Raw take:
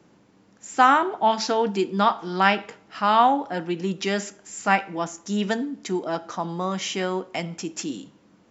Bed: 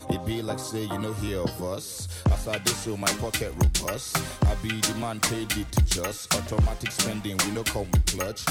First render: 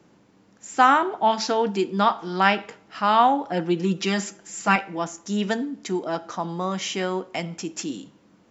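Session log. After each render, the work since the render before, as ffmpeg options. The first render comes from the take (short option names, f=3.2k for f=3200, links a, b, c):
-filter_complex "[0:a]asettb=1/sr,asplit=3[a][b][c];[a]atrim=end=3.494[d];[b]atrim=start=3.49:end=4.76,asetpts=PTS-STARTPTS,afade=t=in:d=0.004:c=qsin,afade=t=out:st=1.266:d=0.004:c=qsin,aecho=1:1:5.9:0.76,atrim=end_sample=56007[e];[c]atrim=start=4.756[f];[d][e]acrossfade=d=0.004:c1=hsin:c2=qsin[g];[g][f]acrossfade=d=0.004:c1=qsin:c2=hsin"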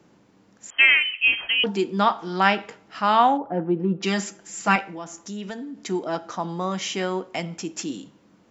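-filter_complex "[0:a]asettb=1/sr,asplit=3[a][b][c];[a]atrim=end=0.704[d];[b]atrim=start=0.7:end=1.64,asetpts=PTS-STARTPTS,afade=t=in:d=0.004:c=qsin,afade=t=out:st=0.936:d=0.004:c=qsin,lowpass=f=2.9k:t=q:w=0.5098,lowpass=f=2.9k:t=q:w=0.6013,lowpass=f=2.9k:t=q:w=0.9,lowpass=f=2.9k:t=q:w=2.563,afreqshift=-3400[e];[c]atrim=start=1.636[f];[d][e]acrossfade=d=0.004:c1=hsin:c2=qsin[g];[g][f]acrossfade=d=0.004:c1=qsin:c2=hsin,asplit=3[h][i][j];[h]afade=t=out:st=3.37:d=0.02[k];[i]lowpass=1k,afade=t=in:st=3.37:d=0.02,afade=t=out:st=4.02:d=0.02[l];[j]afade=t=in:st=4.02:d=0.02[m];[k][l][m]amix=inputs=3:normalize=0,asettb=1/sr,asplit=3[n][o][p];[n]atrim=end=4.904[q];[o]atrim=start=4.9:end=5.79,asetpts=PTS-STARTPTS,afade=t=in:d=0.004:c=qsin,afade=t=out:st=0.886:d=0.004:c=qsin,acompressor=threshold=-34dB:ratio=2.5:attack=3.2:release=140:knee=1:detection=peak[r];[p]atrim=start=5.786[s];[q][r]acrossfade=d=0.004:c1=hsin:c2=qsin[t];[t][s]acrossfade=d=0.004:c1=qsin:c2=hsin"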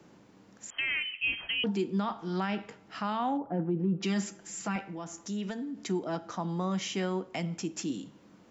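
-filter_complex "[0:a]acrossover=split=260[a][b];[b]acompressor=threshold=-47dB:ratio=1.5[c];[a][c]amix=inputs=2:normalize=0,alimiter=limit=-22dB:level=0:latency=1:release=14"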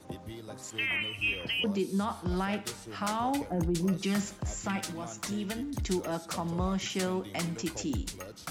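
-filter_complex "[1:a]volume=-14dB[a];[0:a][a]amix=inputs=2:normalize=0"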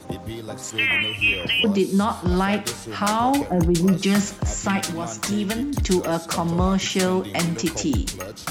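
-af "volume=10.5dB"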